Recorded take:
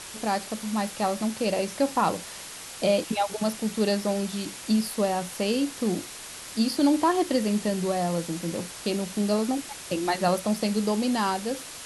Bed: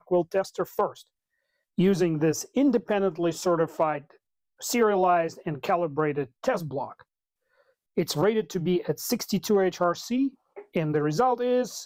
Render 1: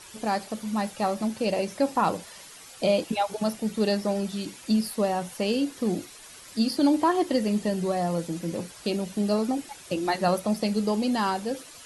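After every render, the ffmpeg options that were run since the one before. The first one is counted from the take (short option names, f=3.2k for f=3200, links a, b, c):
-af "afftdn=nr=10:nf=-41"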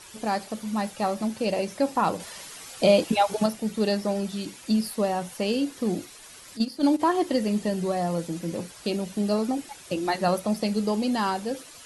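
-filter_complex "[0:a]asplit=3[a][b][c];[a]afade=t=out:st=6.56:d=0.02[d];[b]agate=range=-10dB:threshold=-23dB:ratio=16:release=100:detection=peak,afade=t=in:st=6.56:d=0.02,afade=t=out:st=6.99:d=0.02[e];[c]afade=t=in:st=6.99:d=0.02[f];[d][e][f]amix=inputs=3:normalize=0,asplit=3[g][h][i];[g]atrim=end=2.202[j];[h]atrim=start=2.198:end=3.462,asetpts=PTS-STARTPTS,volume=4.5dB[k];[i]atrim=start=3.458[l];[j][k]acrossfade=d=0.004:c1=hsin:c2=hsin[m];[m][l]acrossfade=d=0.004:c1=hsin:c2=hsin"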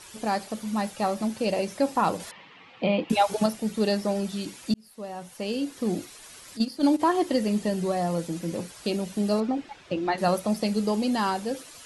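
-filter_complex "[0:a]asettb=1/sr,asplit=3[a][b][c];[a]atrim=end=2.314[d];[b]atrim=start=2.31:end=3.1,asetpts=PTS-STARTPTS,afade=t=in:d=0.004:c=qsin,afade=t=out:st=0.786:d=0.004:c=qsin,highpass=140,equalizer=f=390:t=q:w=4:g=-6,equalizer=f=620:t=q:w=4:g=-9,equalizer=f=1.5k:t=q:w=4:g=-9,lowpass=f=2.8k:w=0.5412,lowpass=f=2.8k:w=1.3066[e];[c]atrim=start=3.096[f];[d][e]acrossfade=d=0.004:c1=hsin:c2=qsin[g];[g][f]acrossfade=d=0.004:c1=qsin:c2=hsin,asettb=1/sr,asplit=3[h][i][j];[h]atrim=end=9.404[k];[i]atrim=start=9.4:end=10.18,asetpts=PTS-STARTPTS,afade=t=in:d=0.004:c=qsin,afade=t=out:st=0.776:d=0.004:c=qsin,lowpass=3.3k[l];[j]atrim=start=10.176[m];[k][l]acrossfade=d=0.004:c1=hsin:c2=qsin[n];[n][m]acrossfade=d=0.004:c1=qsin:c2=hsin,asplit=2[o][p];[o]atrim=end=4.74,asetpts=PTS-STARTPTS,afade=t=out:st=4.736:d=0.004:c=hsin[q];[p]atrim=start=4.74,asetpts=PTS-STARTPTS,afade=t=in:d=1.23[r];[q][r]concat=n=2:v=0:a=1"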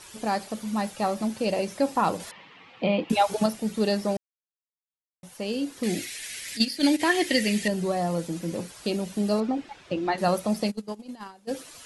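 -filter_complex "[0:a]asettb=1/sr,asplit=3[a][b][c];[a]atrim=end=5.834[d];[b]atrim=start=5.83:end=7.68,asetpts=PTS-STARTPTS,afade=t=in:d=0.004:c=qsin,afade=t=out:st=1.846:d=0.004:c=qsin,highshelf=f=1.5k:t=q:w=3:g=8.5[e];[c]atrim=start=7.676[f];[d][e]acrossfade=d=0.004:c1=hsin:c2=qsin[g];[g][f]acrossfade=d=0.004:c1=qsin:c2=hsin,asplit=3[h][i][j];[h]afade=t=out:st=10.7:d=0.02[k];[i]agate=range=-23dB:threshold=-23dB:ratio=16:release=100:detection=peak,afade=t=in:st=10.7:d=0.02,afade=t=out:st=11.47:d=0.02[l];[j]afade=t=in:st=11.47:d=0.02[m];[k][l][m]amix=inputs=3:normalize=0,asplit=3[n][o][p];[n]atrim=end=4.17,asetpts=PTS-STARTPTS,afade=t=out:st=4.166:d=0.004:c=hsin[q];[o]atrim=start=4.17:end=5.23,asetpts=PTS-STARTPTS,volume=0[r];[p]atrim=start=5.23,asetpts=PTS-STARTPTS,afade=t=in:d=0.004:c=hsin[s];[q][r][s]concat=n=3:v=0:a=1"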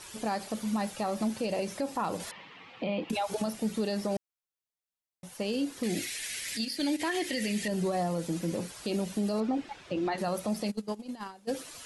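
-af "acompressor=threshold=-25dB:ratio=2.5,alimiter=limit=-22dB:level=0:latency=1:release=41"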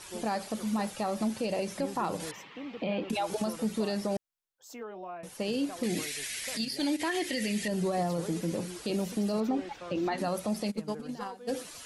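-filter_complex "[1:a]volume=-20dB[a];[0:a][a]amix=inputs=2:normalize=0"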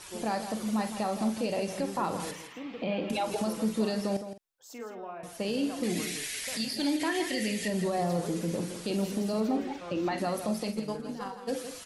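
-filter_complex "[0:a]asplit=2[a][b];[b]adelay=46,volume=-10dB[c];[a][c]amix=inputs=2:normalize=0,asplit=2[d][e];[e]aecho=0:1:164:0.316[f];[d][f]amix=inputs=2:normalize=0"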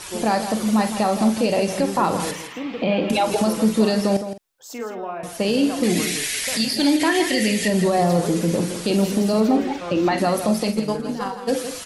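-af "volume=11dB"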